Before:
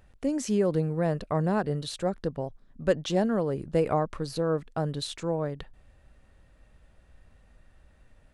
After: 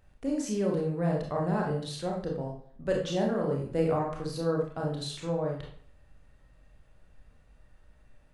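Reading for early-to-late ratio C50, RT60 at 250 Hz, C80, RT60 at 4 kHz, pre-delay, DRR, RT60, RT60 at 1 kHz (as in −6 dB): 4.0 dB, 0.55 s, 8.5 dB, 0.40 s, 25 ms, −1.5 dB, 0.55 s, 0.60 s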